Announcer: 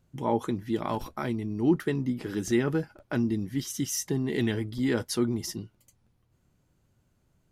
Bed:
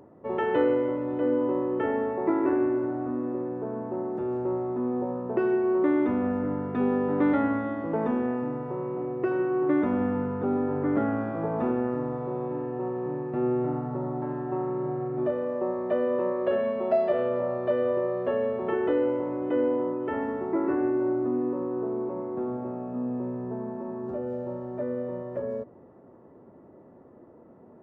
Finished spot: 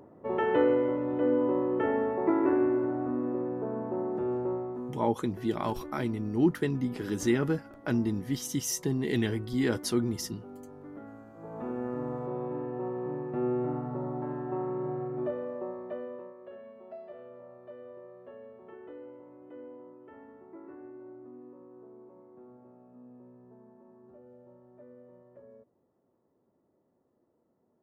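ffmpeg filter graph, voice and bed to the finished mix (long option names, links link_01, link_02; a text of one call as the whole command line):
ffmpeg -i stem1.wav -i stem2.wav -filter_complex "[0:a]adelay=4750,volume=-1dB[link_01];[1:a]volume=15.5dB,afade=type=out:start_time=4.3:duration=0.77:silence=0.112202,afade=type=in:start_time=11.35:duration=0.78:silence=0.149624,afade=type=out:start_time=14.97:duration=1.37:silence=0.125893[link_02];[link_01][link_02]amix=inputs=2:normalize=0" out.wav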